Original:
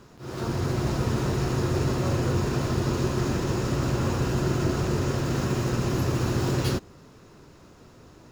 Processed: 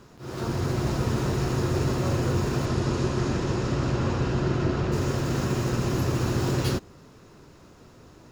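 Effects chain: 2.65–4.91 LPF 9200 Hz -> 3900 Hz 12 dB/oct

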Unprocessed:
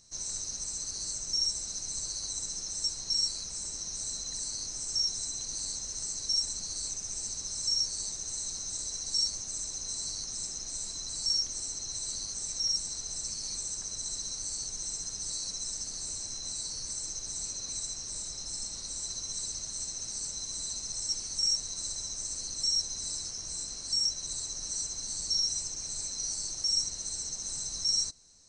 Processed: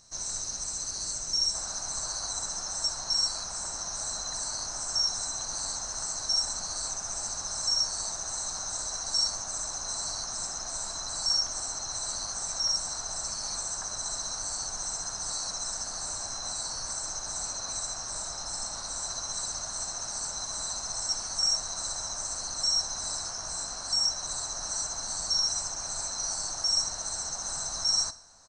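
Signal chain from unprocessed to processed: band shelf 1000 Hz +8 dB, from 1.53 s +15 dB; feedback echo 61 ms, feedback 52%, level -18 dB; gain +2 dB

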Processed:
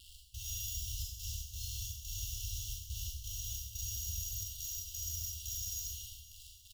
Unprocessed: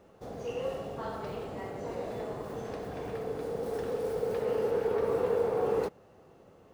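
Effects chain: tilt -3.5 dB/oct; notch comb 710 Hz; de-hum 151.1 Hz, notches 3; sample-rate reducer 6200 Hz, jitter 0%; step gate "x.xxxx.x.x" 88 bpm -24 dB; bit-crush 8-bit; compressor, threshold -29 dBFS, peak gain reduction 8 dB; FFT band-reject 120–2700 Hz; fixed phaser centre 300 Hz, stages 4; on a send: feedback echo 0.262 s, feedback 57%, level -15.5 dB; on the sum: Schroeder reverb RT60 0.8 s, combs from 29 ms, DRR -3 dB; gain +4 dB

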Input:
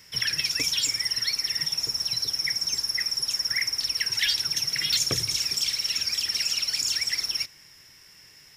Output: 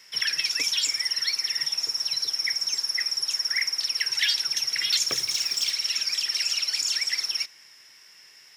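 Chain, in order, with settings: weighting filter A; 5.08–5.71 short-mantissa float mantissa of 2-bit

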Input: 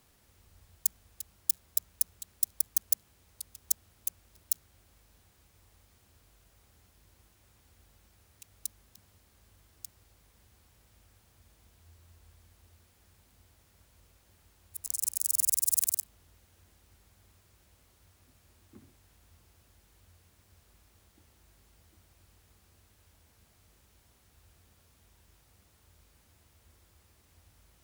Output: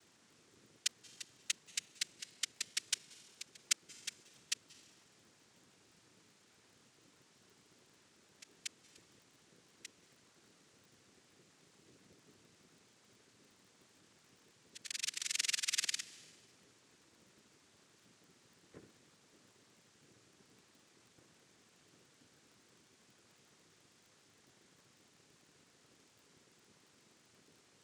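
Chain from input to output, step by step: added harmonics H 3 -18 dB, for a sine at -4.5 dBFS; noise vocoder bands 3; on a send at -19 dB: reverb RT60 1.4 s, pre-delay 0.176 s; on the sum: crackle 33/s -58 dBFS; gain +3 dB

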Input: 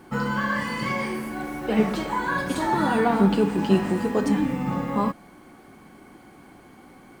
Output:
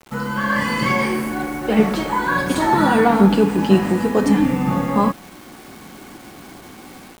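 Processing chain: AGC gain up to 8.5 dB; bit-crush 7-bit

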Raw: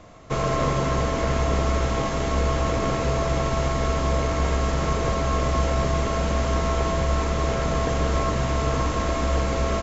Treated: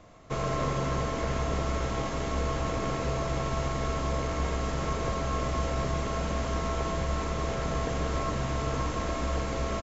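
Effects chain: echo 97 ms -13.5 dB; gain -6.5 dB

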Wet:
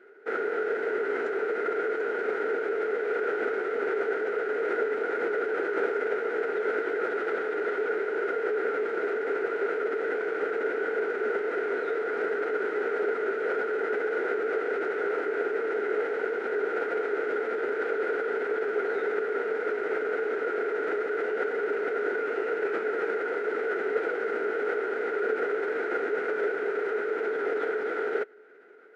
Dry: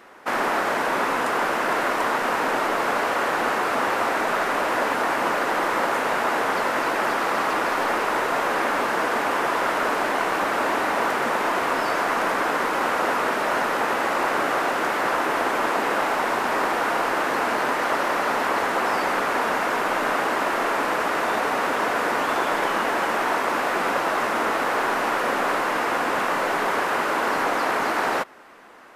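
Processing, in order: vowel filter e; formant shift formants -4 st; gain +6 dB

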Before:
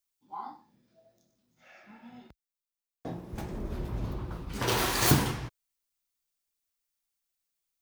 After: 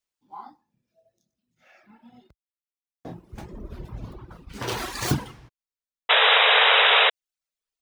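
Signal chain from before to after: median filter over 3 samples; reverb removal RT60 1.8 s; painted sound noise, 6.09–7.1, 410–3900 Hz -17 dBFS

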